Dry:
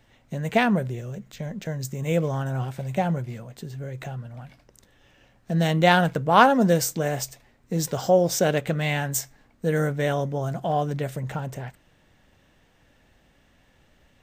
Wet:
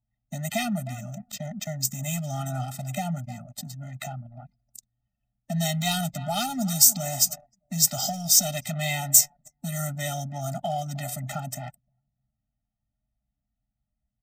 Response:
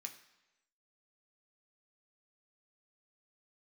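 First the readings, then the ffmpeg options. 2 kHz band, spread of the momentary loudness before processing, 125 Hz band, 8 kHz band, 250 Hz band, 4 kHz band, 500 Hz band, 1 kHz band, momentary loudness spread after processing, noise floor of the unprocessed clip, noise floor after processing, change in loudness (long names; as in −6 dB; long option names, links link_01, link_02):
−8.5 dB, 18 LU, −4.5 dB, +11.0 dB, −6.5 dB, +4.5 dB, −11.5 dB, −9.0 dB, 20 LU, −61 dBFS, −84 dBFS, −0.5 dB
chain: -filter_complex "[0:a]highpass=63,asplit=2[link_01][link_02];[link_02]adelay=306,lowpass=frequency=2400:poles=1,volume=-20dB,asplit=2[link_03][link_04];[link_04]adelay=306,lowpass=frequency=2400:poles=1,volume=0.34,asplit=2[link_05][link_06];[link_06]adelay=306,lowpass=frequency=2400:poles=1,volume=0.34[link_07];[link_01][link_03][link_05][link_07]amix=inputs=4:normalize=0,asplit=2[link_08][link_09];[link_09]asoftclip=type=hard:threshold=-18dB,volume=-12dB[link_10];[link_08][link_10]amix=inputs=2:normalize=0,acrossover=split=180|3000[link_11][link_12][link_13];[link_12]acompressor=threshold=-27dB:ratio=4[link_14];[link_11][link_14][link_13]amix=inputs=3:normalize=0,aeval=exprs='1*sin(PI/2*2.24*val(0)/1)':channel_layout=same,bass=frequency=250:gain=-7,treble=frequency=4000:gain=13,anlmdn=158,bandreject=frequency=1500:width=18,adynamicequalizer=threshold=0.02:dfrequency=1500:dqfactor=3.8:tfrequency=1500:tqfactor=3.8:attack=5:release=100:ratio=0.375:range=3.5:mode=cutabove:tftype=bell,afftfilt=real='re*eq(mod(floor(b*sr/1024/300),2),0)':imag='im*eq(mod(floor(b*sr/1024/300),2),0)':win_size=1024:overlap=0.75,volume=-9.5dB"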